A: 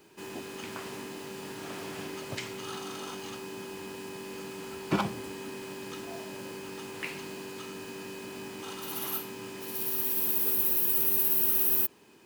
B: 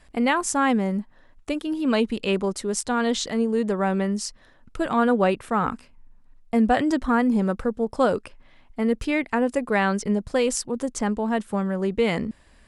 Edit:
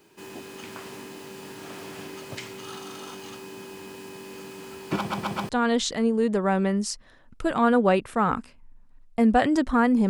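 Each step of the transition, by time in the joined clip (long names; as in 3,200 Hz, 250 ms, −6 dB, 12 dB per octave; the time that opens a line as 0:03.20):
A
0:04.97: stutter in place 0.13 s, 4 plays
0:05.49: continue with B from 0:02.84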